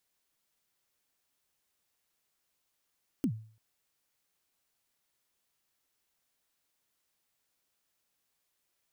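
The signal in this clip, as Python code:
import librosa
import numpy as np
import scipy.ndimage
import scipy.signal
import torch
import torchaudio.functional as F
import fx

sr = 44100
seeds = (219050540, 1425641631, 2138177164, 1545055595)

y = fx.drum_kick(sr, seeds[0], length_s=0.34, level_db=-23.0, start_hz=310.0, end_hz=110.0, sweep_ms=78.0, decay_s=0.46, click=True)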